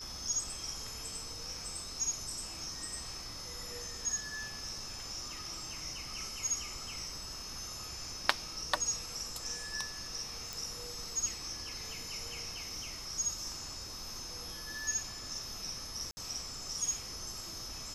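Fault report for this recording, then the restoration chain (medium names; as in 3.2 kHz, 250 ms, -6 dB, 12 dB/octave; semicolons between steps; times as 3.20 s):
whine 5.2 kHz -45 dBFS
10.53 s: pop
16.11–16.17 s: dropout 60 ms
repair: de-click; band-stop 5.2 kHz, Q 30; interpolate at 16.11 s, 60 ms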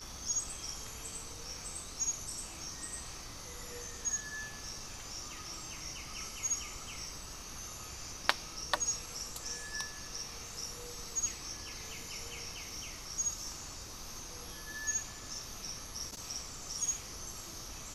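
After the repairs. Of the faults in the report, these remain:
nothing left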